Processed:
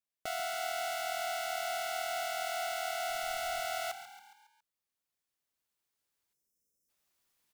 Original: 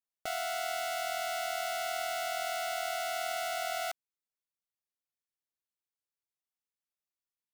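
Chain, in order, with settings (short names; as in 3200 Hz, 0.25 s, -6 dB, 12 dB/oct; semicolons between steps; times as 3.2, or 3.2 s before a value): recorder AGC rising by 5.2 dB/s; 3.09–3.6 added noise brown -57 dBFS; 6.33–6.89 spectral delete 570–5000 Hz; on a send: frequency-shifting echo 0.138 s, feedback 52%, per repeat +37 Hz, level -12 dB; on the sum: gain -1.5 dB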